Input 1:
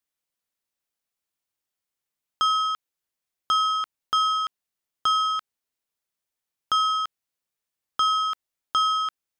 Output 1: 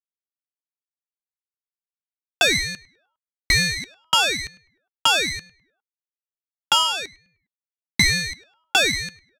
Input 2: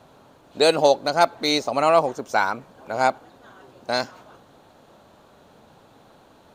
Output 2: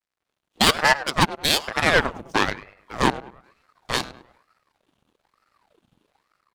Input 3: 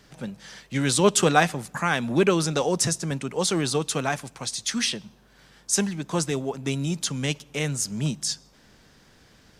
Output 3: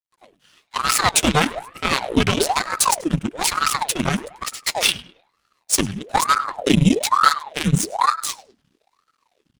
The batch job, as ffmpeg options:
-filter_complex "[0:a]highpass=56,acrossover=split=480[s0][s1];[s0]asubboost=boost=12:cutoff=170[s2];[s1]dynaudnorm=f=110:g=5:m=1.88[s3];[s2][s3]amix=inputs=2:normalize=0,aecho=1:1:7.4:0.33,acontrast=50,equalizer=f=630:t=o:w=0.33:g=-3,equalizer=f=3150:t=o:w=0.33:g=10,equalizer=f=10000:t=o:w=0.33:g=8,afreqshift=-150,aeval=exprs='sgn(val(0))*max(abs(val(0))-0.01,0)':c=same,aeval=exprs='1.5*(cos(1*acos(clip(val(0)/1.5,-1,1)))-cos(1*PI/2))+0.188*(cos(7*acos(clip(val(0)/1.5,-1,1)))-cos(7*PI/2))':c=same,asplit=2[s4][s5];[s5]adelay=102,lowpass=f=2200:p=1,volume=0.178,asplit=2[s6][s7];[s7]adelay=102,lowpass=f=2200:p=1,volume=0.4,asplit=2[s8][s9];[s9]adelay=102,lowpass=f=2200:p=1,volume=0.4,asplit=2[s10][s11];[s11]adelay=102,lowpass=f=2200:p=1,volume=0.4[s12];[s6][s8][s10][s12]amix=inputs=4:normalize=0[s13];[s4][s13]amix=inputs=2:normalize=0,aeval=exprs='val(0)*sin(2*PI*730*n/s+730*0.8/1.1*sin(2*PI*1.1*n/s))':c=same,volume=0.668"

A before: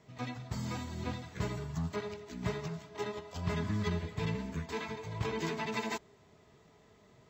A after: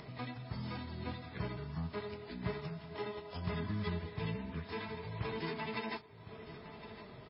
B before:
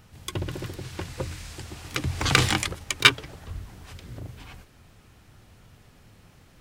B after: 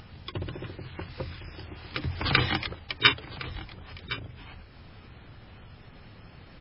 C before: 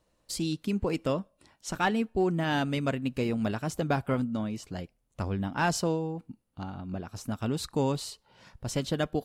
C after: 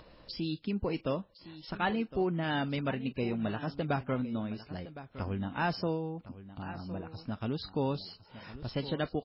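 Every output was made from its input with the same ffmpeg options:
-af "acompressor=mode=upward:threshold=0.0178:ratio=2.5,aecho=1:1:1061:0.188,volume=0.668" -ar 12000 -c:a libmp3lame -b:a 16k

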